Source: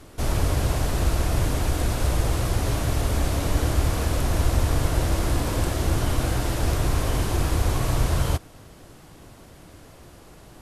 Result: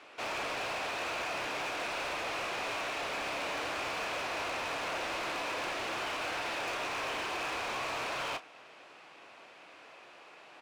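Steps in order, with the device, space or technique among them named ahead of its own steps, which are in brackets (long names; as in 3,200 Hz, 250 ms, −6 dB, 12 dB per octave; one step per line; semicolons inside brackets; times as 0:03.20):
megaphone (band-pass filter 690–3,500 Hz; parametric band 2,500 Hz +9 dB 0.29 octaves; hard clipping −33 dBFS, distortion −11 dB; double-tracking delay 31 ms −12 dB)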